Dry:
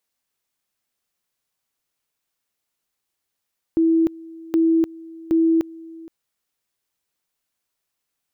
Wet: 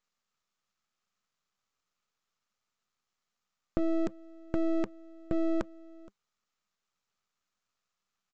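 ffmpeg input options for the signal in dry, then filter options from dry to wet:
-f lavfi -i "aevalsrc='pow(10,(-13.5-22*gte(mod(t,0.77),0.3))/20)*sin(2*PI*327*t)':duration=2.31:sample_rate=44100"
-af "equalizer=frequency=200:width_type=o:width=0.33:gain=9,equalizer=frequency=315:width_type=o:width=0.33:gain=-9,equalizer=frequency=1250:width_type=o:width=0.33:gain=11,aresample=16000,aeval=exprs='max(val(0),0)':channel_layout=same,aresample=44100"

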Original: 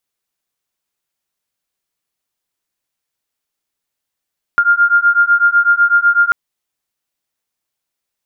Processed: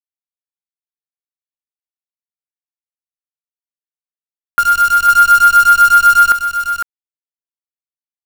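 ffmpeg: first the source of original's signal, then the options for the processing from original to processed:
-f lavfi -i "aevalsrc='0.266*(sin(2*PI*1400*t)+sin(2*PI*1408*t))':duration=1.74:sample_rate=44100"
-filter_complex "[0:a]acrusher=bits=4:dc=4:mix=0:aa=0.000001,asplit=2[link_01][link_02];[link_02]aecho=0:1:505:0.473[link_03];[link_01][link_03]amix=inputs=2:normalize=0"

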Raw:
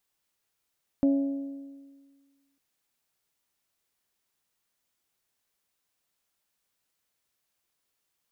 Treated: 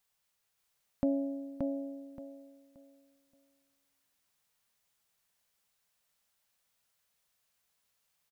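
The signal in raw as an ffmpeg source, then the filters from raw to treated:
-f lavfi -i "aevalsrc='0.126*pow(10,-3*t/1.63)*sin(2*PI*277*t)+0.0355*pow(10,-3*t/1.324)*sin(2*PI*554*t)+0.01*pow(10,-3*t/1.253)*sin(2*PI*664.8*t)+0.00282*pow(10,-3*t/1.172)*sin(2*PI*831*t)':duration=1.55:sample_rate=44100"
-filter_complex "[0:a]equalizer=frequency=320:width=3.9:gain=-14.5,asplit=2[link_01][link_02];[link_02]aecho=0:1:576|1152|1728|2304:0.668|0.167|0.0418|0.0104[link_03];[link_01][link_03]amix=inputs=2:normalize=0"

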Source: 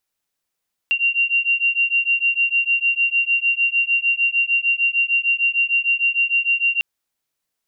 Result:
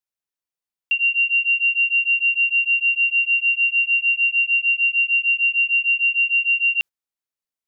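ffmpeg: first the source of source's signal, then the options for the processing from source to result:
-f lavfi -i "aevalsrc='0.112*(sin(2*PI*2760*t)+sin(2*PI*2766.6*t))':duration=5.9:sample_rate=44100"
-af "agate=range=-13dB:threshold=-28dB:ratio=16:detection=peak"

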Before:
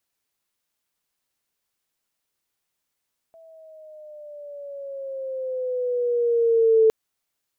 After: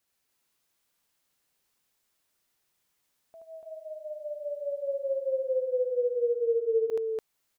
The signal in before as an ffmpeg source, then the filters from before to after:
-f lavfi -i "aevalsrc='pow(10,(-12+34*(t/3.56-1))/20)*sin(2*PI*659*3.56/(-7*log(2)/12)*(exp(-7*log(2)/12*t/3.56)-1))':duration=3.56:sample_rate=44100"
-filter_complex "[0:a]acompressor=threshold=-31dB:ratio=5,asplit=2[link_01][link_02];[link_02]aecho=0:1:75.8|288.6:0.794|0.891[link_03];[link_01][link_03]amix=inputs=2:normalize=0"

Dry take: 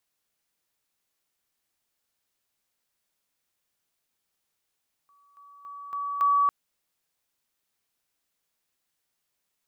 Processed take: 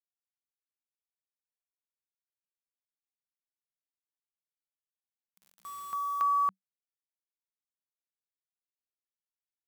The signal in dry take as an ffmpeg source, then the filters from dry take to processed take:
-f lavfi -i "aevalsrc='pow(10,(-58.5+10*floor(t/0.28))/20)*sin(2*PI*1140*t)':duration=1.4:sample_rate=44100"
-af "acrusher=bits=7:mix=0:aa=0.000001,equalizer=frequency=190:width=6.2:gain=10,acompressor=threshold=-33dB:ratio=1.5"

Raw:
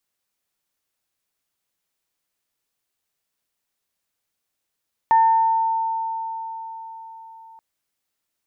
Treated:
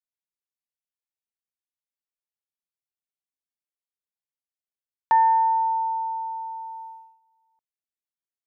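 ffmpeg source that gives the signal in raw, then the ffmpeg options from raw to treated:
-f lavfi -i "aevalsrc='0.282*pow(10,-3*t/4.66)*sin(2*PI*900*t)+0.0376*pow(10,-3*t/0.95)*sin(2*PI*1800*t)':duration=2.48:sample_rate=44100"
-af "agate=range=-23dB:threshold=-38dB:ratio=16:detection=peak,equalizer=frequency=1200:width_type=o:width=0.77:gain=-3.5"

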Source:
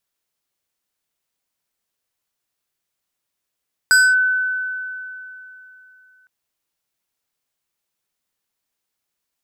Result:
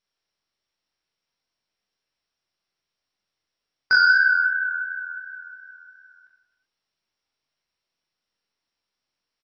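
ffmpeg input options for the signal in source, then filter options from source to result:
-f lavfi -i "aevalsrc='0.398*pow(10,-3*t/3.17)*sin(2*PI*1510*t+0.71*clip(1-t/0.24,0,1)*sin(2*PI*4.25*1510*t))':duration=2.36:sample_rate=44100"
-filter_complex "[0:a]flanger=delay=19:depth=6.8:speed=2.8,asplit=2[link_01][link_02];[link_02]aecho=0:1:40|92|159.6|247.5|361.7:0.631|0.398|0.251|0.158|0.1[link_03];[link_01][link_03]amix=inputs=2:normalize=0" -ar 22050 -c:a mp2 -b:a 48k

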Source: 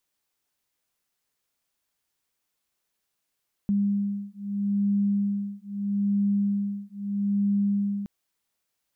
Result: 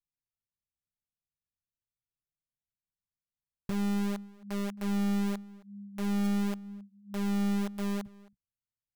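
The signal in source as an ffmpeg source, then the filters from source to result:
-f lavfi -i "aevalsrc='0.0501*(sin(2*PI*201*t)+sin(2*PI*201.78*t))':duration=4.37:sample_rate=44100"
-filter_complex "[0:a]flanger=delay=5.9:depth=8.2:regen=-18:speed=0.44:shape=triangular,acrossover=split=180[link_01][link_02];[link_02]acrusher=bits=3:dc=4:mix=0:aa=0.000001[link_03];[link_01][link_03]amix=inputs=2:normalize=0,asplit=2[link_04][link_05];[link_05]adelay=268.2,volume=-22dB,highshelf=frequency=4000:gain=-6.04[link_06];[link_04][link_06]amix=inputs=2:normalize=0"

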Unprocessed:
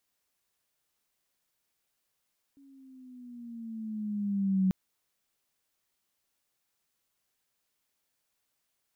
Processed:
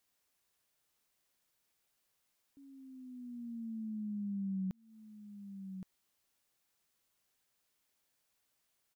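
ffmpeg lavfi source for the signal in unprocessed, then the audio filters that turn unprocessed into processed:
-f lavfi -i "aevalsrc='pow(10,(-21.5+32.5*(t/2.14-1))/20)*sin(2*PI*279*2.14/(-7*log(2)/12)*(exp(-7*log(2)/12*t/2.14)-1))':duration=2.14:sample_rate=44100"
-af "aecho=1:1:1119:0.119,acompressor=threshold=-41dB:ratio=2.5"

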